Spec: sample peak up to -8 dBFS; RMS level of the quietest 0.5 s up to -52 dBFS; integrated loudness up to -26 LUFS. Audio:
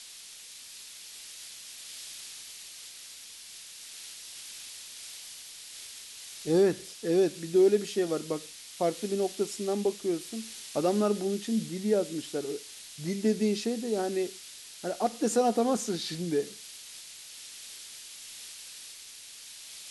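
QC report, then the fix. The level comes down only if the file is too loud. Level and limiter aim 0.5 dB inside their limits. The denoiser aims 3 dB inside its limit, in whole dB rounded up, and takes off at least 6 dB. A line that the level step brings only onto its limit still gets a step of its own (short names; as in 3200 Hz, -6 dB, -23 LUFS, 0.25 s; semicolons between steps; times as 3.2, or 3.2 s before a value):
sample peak -14.0 dBFS: OK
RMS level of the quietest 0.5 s -47 dBFS: fail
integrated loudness -30.5 LUFS: OK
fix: denoiser 8 dB, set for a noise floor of -47 dBFS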